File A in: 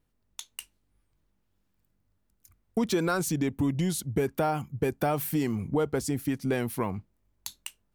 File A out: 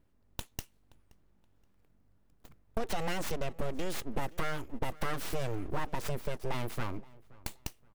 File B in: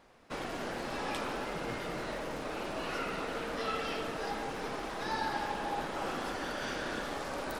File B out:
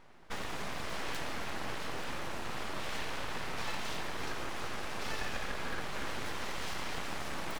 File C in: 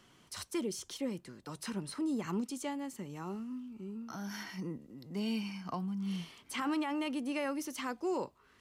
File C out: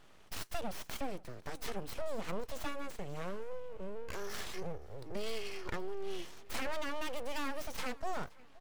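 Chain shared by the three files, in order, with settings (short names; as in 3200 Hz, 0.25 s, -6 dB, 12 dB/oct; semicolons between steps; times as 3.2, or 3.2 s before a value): tracing distortion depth 0.079 ms; compressor 2:1, threshold -43 dBFS; full-wave rectifier; on a send: feedback echo 0.524 s, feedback 30%, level -22 dB; on the sum: mismatched tape noise reduction decoder only; gain +6.5 dB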